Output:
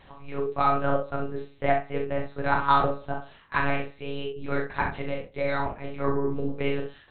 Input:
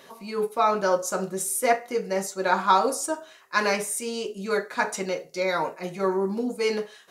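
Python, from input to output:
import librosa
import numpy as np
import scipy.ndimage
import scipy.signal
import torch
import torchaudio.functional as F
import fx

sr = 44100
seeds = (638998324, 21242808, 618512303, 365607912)

y = fx.lpc_monotone(x, sr, seeds[0], pitch_hz=140.0, order=8)
y = fx.room_early_taps(y, sr, ms=(39, 65), db=(-5.5, -8.5))
y = y * 10.0 ** (-2.5 / 20.0)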